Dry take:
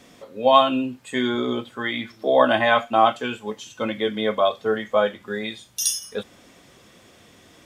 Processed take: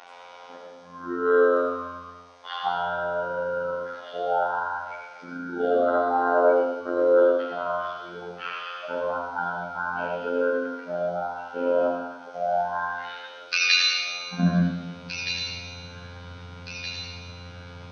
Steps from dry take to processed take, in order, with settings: dynamic EQ 2100 Hz, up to -8 dB, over -37 dBFS, Q 1.2; in parallel at 0 dB: compressor, threshold -31 dBFS, peak gain reduction 18.5 dB; on the sum: robotiser 205 Hz; high-pass sweep 1600 Hz -> 250 Hz, 5.4–6.58; on a send: thin delay 0.671 s, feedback 55%, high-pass 4400 Hz, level -9 dB; on the sum: Schroeder reverb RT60 0.46 s, combs from 31 ms, DRR -0.5 dB; speed mistake 78 rpm record played at 33 rpm

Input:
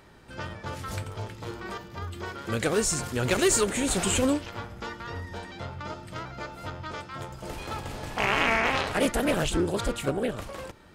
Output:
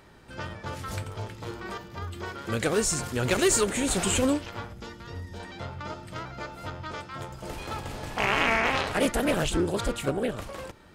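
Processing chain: 4.73–5.4 bell 1200 Hz -8.5 dB 2.6 oct

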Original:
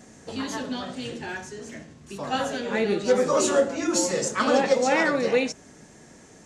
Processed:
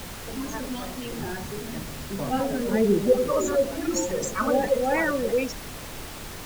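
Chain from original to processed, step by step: spectral gate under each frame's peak -15 dB strong; 1.17–3.13 tilt -3.5 dB/oct; added noise pink -36 dBFS; gain -1.5 dB

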